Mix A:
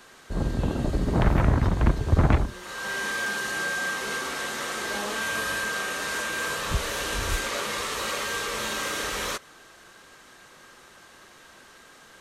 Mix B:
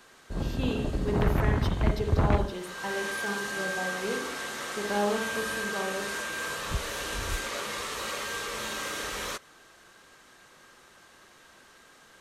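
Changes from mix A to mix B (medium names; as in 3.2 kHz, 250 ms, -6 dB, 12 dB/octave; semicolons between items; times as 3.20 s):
speech +9.0 dB; background -4.5 dB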